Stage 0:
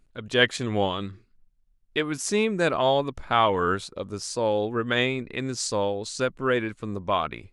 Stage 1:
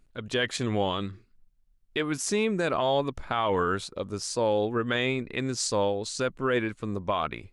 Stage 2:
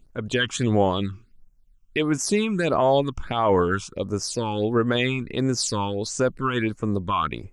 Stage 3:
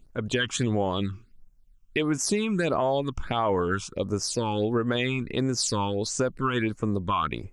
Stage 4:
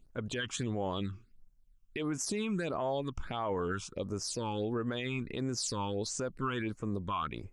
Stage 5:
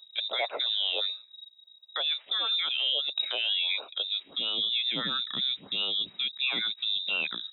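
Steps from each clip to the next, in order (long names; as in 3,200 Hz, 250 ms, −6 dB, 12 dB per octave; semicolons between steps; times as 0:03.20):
brickwall limiter −16 dBFS, peak gain reduction 9.5 dB
all-pass phaser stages 8, 1.5 Hz, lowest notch 530–4,000 Hz; level +6.5 dB
downward compressor, threshold −21 dBFS, peak gain reduction 7 dB
brickwall limiter −18.5 dBFS, peak gain reduction 7.5 dB; level −6.5 dB
voice inversion scrambler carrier 3,800 Hz; high-pass filter sweep 560 Hz → 190 Hz, 0:03.93–0:04.49; level +4.5 dB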